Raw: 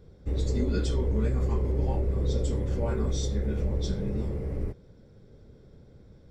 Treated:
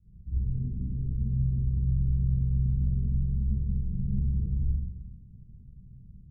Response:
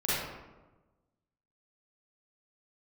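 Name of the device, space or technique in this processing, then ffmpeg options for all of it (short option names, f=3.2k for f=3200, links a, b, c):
club heard from the street: -filter_complex "[0:a]alimiter=limit=-22dB:level=0:latency=1:release=116,lowpass=f=190:w=0.5412,lowpass=f=190:w=1.3066[a];[1:a]atrim=start_sample=2205[b];[a][b]afir=irnorm=-1:irlink=0,volume=-8dB"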